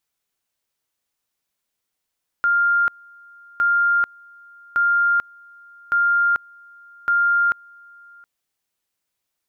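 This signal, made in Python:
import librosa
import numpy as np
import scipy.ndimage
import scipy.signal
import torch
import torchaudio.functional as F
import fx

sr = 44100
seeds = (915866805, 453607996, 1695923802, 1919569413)

y = fx.two_level_tone(sr, hz=1400.0, level_db=-14.5, drop_db=28.5, high_s=0.44, low_s=0.72, rounds=5)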